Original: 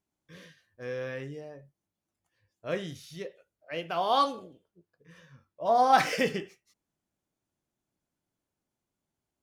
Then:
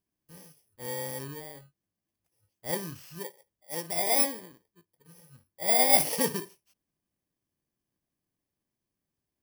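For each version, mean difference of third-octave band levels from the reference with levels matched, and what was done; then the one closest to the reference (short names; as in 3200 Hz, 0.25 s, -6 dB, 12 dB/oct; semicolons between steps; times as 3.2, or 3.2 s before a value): 9.0 dB: FFT order left unsorted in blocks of 32 samples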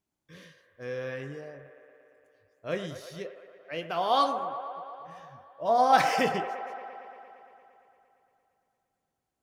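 3.0 dB: band-limited delay 0.115 s, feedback 77%, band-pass 950 Hz, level -9 dB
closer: second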